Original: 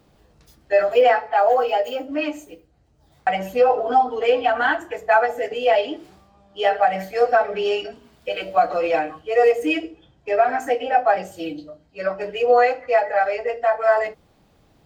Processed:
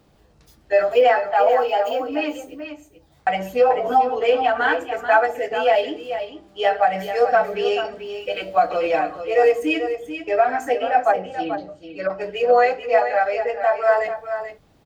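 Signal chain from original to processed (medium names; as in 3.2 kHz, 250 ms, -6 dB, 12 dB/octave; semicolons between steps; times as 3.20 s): 11.11–12.10 s: low-pass that closes with the level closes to 970 Hz, closed at -18.5 dBFS; delay 437 ms -9.5 dB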